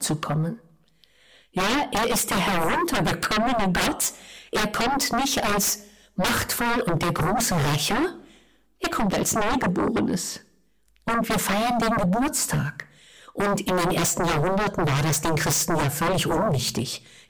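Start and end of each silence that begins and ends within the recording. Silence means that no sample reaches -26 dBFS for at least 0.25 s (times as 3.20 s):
0.52–1.57 s
4.09–4.53 s
5.74–6.18 s
8.09–8.84 s
10.36–11.08 s
12.80–13.38 s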